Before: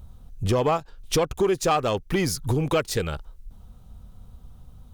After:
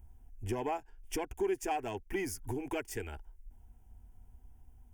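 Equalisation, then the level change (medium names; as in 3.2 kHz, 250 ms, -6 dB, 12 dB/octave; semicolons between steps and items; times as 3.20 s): static phaser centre 810 Hz, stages 8; -9.0 dB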